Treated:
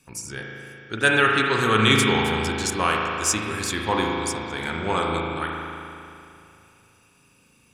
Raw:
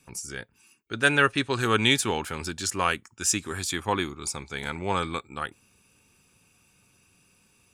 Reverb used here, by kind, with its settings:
spring reverb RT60 2.7 s, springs 37 ms, chirp 65 ms, DRR −1 dB
level +1.5 dB

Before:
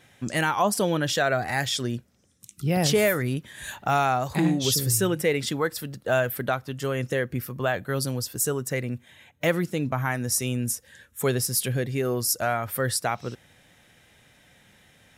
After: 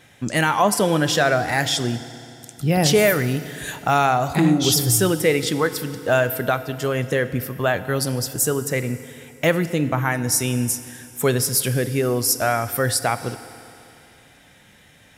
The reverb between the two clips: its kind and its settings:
feedback delay network reverb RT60 2.8 s, high-frequency decay 0.95×, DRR 12 dB
level +5 dB

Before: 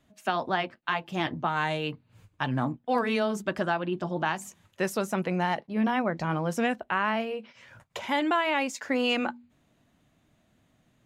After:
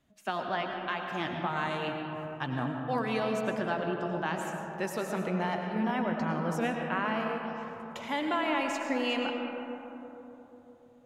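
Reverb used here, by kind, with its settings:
comb and all-pass reverb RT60 3.7 s, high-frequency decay 0.3×, pre-delay 65 ms, DRR 2 dB
level −5.5 dB

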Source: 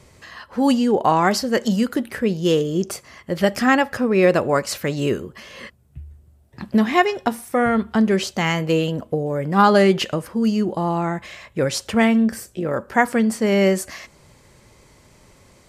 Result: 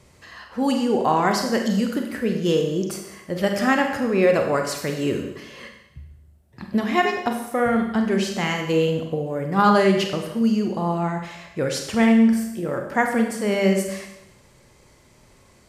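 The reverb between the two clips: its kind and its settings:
four-comb reverb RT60 0.88 s, combs from 31 ms, DRR 3.5 dB
level −4 dB

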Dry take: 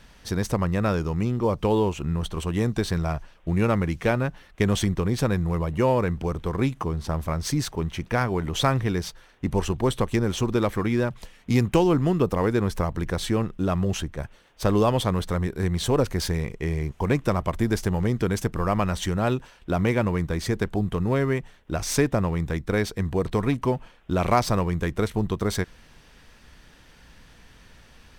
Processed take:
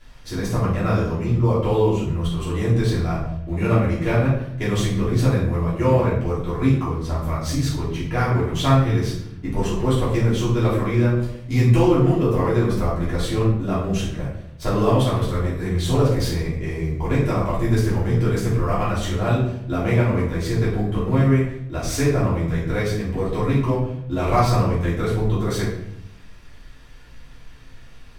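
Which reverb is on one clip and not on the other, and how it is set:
rectangular room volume 170 cubic metres, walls mixed, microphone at 3.1 metres
level −8.5 dB

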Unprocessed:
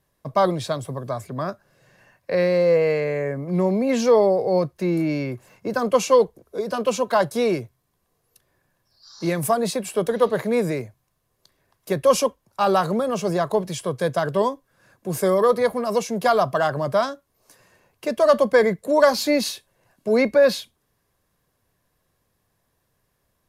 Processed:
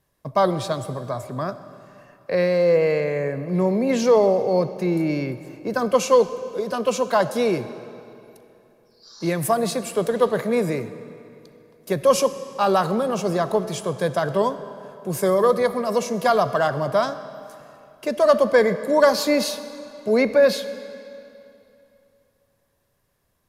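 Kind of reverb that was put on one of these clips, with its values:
comb and all-pass reverb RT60 2.8 s, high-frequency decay 0.85×, pre-delay 20 ms, DRR 12.5 dB

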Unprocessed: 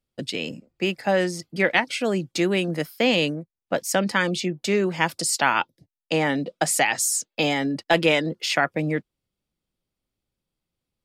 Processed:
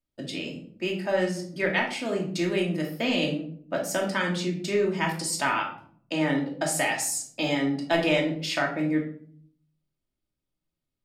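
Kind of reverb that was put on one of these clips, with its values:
rectangular room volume 690 cubic metres, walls furnished, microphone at 2.7 metres
level −8 dB

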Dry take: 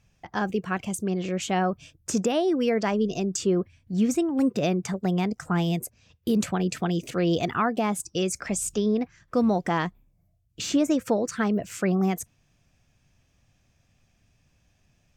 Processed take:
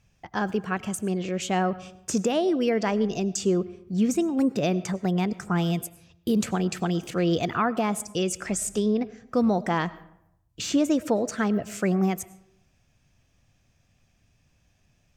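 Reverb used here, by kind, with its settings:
comb and all-pass reverb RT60 0.77 s, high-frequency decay 0.6×, pre-delay 60 ms, DRR 18 dB

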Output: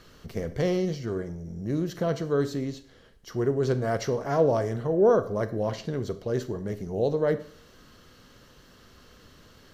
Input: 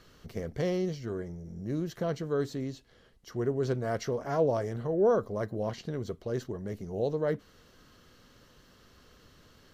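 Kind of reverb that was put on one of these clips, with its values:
four-comb reverb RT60 0.51 s, combs from 28 ms, DRR 12 dB
level +4.5 dB

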